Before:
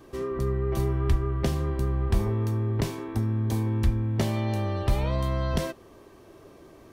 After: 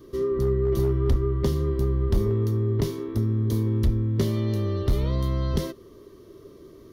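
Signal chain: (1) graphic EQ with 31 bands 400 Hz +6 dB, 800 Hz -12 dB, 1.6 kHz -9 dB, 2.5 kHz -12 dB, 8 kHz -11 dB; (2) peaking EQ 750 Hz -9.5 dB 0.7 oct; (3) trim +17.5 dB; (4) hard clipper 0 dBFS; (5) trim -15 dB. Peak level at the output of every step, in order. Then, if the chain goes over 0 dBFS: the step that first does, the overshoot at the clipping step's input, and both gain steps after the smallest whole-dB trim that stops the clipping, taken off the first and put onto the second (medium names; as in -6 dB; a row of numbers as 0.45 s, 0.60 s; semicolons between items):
-12.0 dBFS, -12.5 dBFS, +5.0 dBFS, 0.0 dBFS, -15.0 dBFS; step 3, 5.0 dB; step 3 +12.5 dB, step 5 -10 dB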